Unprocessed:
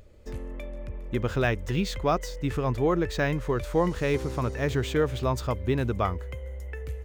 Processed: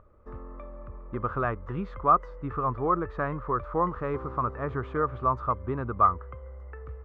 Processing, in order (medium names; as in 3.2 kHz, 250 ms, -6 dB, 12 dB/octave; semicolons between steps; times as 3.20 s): resonant low-pass 1.2 kHz, resonance Q 8; trim -6 dB